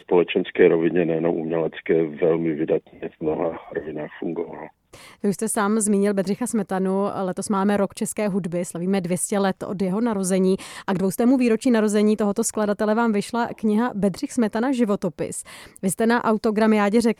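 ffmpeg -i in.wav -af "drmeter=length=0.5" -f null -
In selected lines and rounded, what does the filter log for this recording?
Channel 1: DR: 10.2
Overall DR: 10.2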